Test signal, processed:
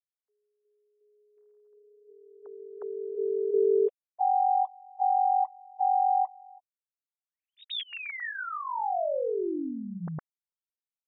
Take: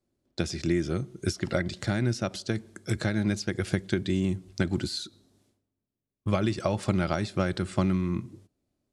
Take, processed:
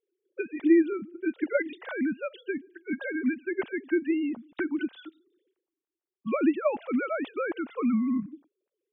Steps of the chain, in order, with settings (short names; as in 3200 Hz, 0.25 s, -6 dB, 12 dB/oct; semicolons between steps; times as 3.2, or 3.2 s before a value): sine-wave speech